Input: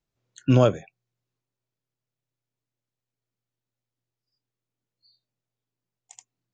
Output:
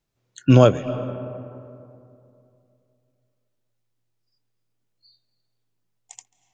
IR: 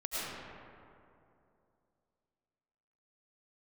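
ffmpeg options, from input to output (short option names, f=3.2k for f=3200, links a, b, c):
-filter_complex "[0:a]asplit=2[a][b];[1:a]atrim=start_sample=2205,lowpass=5k,adelay=139[c];[b][c]afir=irnorm=-1:irlink=0,volume=-18.5dB[d];[a][d]amix=inputs=2:normalize=0,volume=5dB"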